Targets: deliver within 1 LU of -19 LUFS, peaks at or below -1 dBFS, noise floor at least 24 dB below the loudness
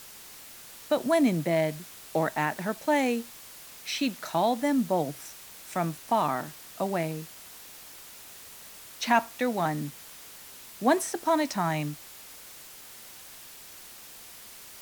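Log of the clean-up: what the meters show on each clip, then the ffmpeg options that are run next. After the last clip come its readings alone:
noise floor -47 dBFS; noise floor target -52 dBFS; loudness -28.0 LUFS; peak level -8.5 dBFS; loudness target -19.0 LUFS
-> -af "afftdn=nr=6:nf=-47"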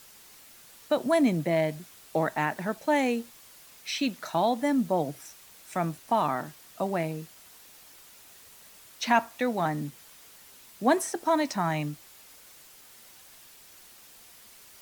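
noise floor -53 dBFS; loudness -28.5 LUFS; peak level -8.5 dBFS; loudness target -19.0 LUFS
-> -af "volume=2.99,alimiter=limit=0.891:level=0:latency=1"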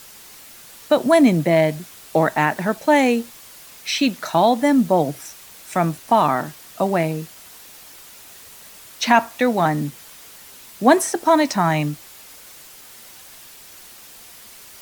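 loudness -19.0 LUFS; peak level -1.0 dBFS; noise floor -43 dBFS

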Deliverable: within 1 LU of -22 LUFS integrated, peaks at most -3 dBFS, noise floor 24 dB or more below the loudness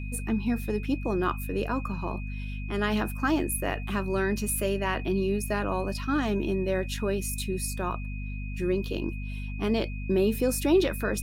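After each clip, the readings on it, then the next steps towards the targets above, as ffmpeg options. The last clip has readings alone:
hum 50 Hz; highest harmonic 250 Hz; hum level -32 dBFS; steady tone 2.5 kHz; tone level -44 dBFS; loudness -29.0 LUFS; peak level -12.0 dBFS; loudness target -22.0 LUFS
-> -af "bandreject=f=50:t=h:w=4,bandreject=f=100:t=h:w=4,bandreject=f=150:t=h:w=4,bandreject=f=200:t=h:w=4,bandreject=f=250:t=h:w=4"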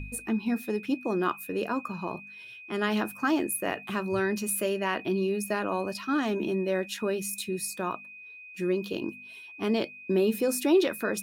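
hum not found; steady tone 2.5 kHz; tone level -44 dBFS
-> -af "bandreject=f=2500:w=30"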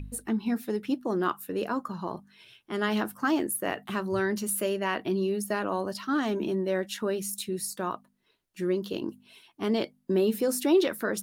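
steady tone not found; loudness -29.5 LUFS; peak level -13.5 dBFS; loudness target -22.0 LUFS
-> -af "volume=2.37"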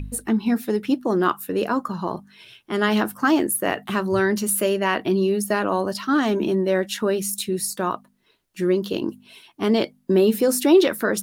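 loudness -22.0 LUFS; peak level -6.0 dBFS; noise floor -62 dBFS

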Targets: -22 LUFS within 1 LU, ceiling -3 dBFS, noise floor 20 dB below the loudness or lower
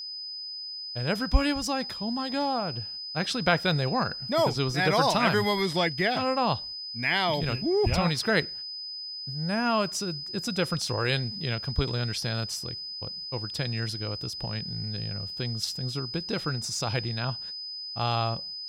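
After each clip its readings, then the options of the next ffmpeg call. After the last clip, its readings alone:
steady tone 5 kHz; tone level -35 dBFS; loudness -28.0 LUFS; peak level -8.5 dBFS; loudness target -22.0 LUFS
-> -af "bandreject=f=5000:w=30"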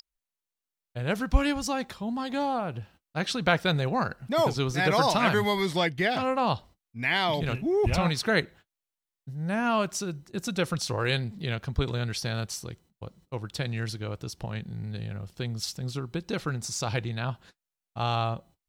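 steady tone not found; loudness -28.5 LUFS; peak level -8.5 dBFS; loudness target -22.0 LUFS
-> -af "volume=2.11,alimiter=limit=0.708:level=0:latency=1"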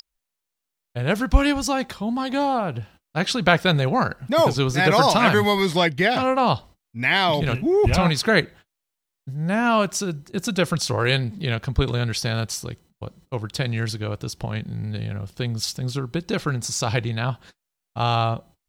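loudness -22.0 LUFS; peak level -3.0 dBFS; noise floor -83 dBFS

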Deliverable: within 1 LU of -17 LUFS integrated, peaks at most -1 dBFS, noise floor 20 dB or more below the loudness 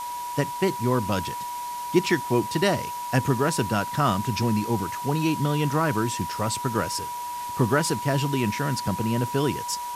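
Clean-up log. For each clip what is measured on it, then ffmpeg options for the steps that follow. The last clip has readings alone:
steady tone 970 Hz; tone level -30 dBFS; noise floor -33 dBFS; noise floor target -46 dBFS; loudness -25.5 LUFS; peak level -7.0 dBFS; loudness target -17.0 LUFS
-> -af "bandreject=f=970:w=30"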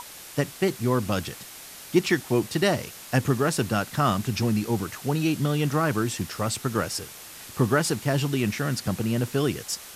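steady tone not found; noise floor -43 dBFS; noise floor target -46 dBFS
-> -af "afftdn=nr=6:nf=-43"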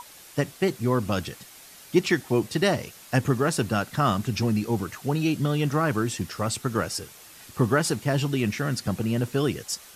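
noise floor -48 dBFS; loudness -26.0 LUFS; peak level -7.5 dBFS; loudness target -17.0 LUFS
-> -af "volume=2.82,alimiter=limit=0.891:level=0:latency=1"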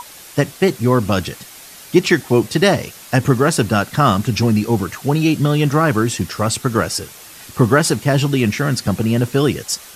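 loudness -17.0 LUFS; peak level -1.0 dBFS; noise floor -39 dBFS

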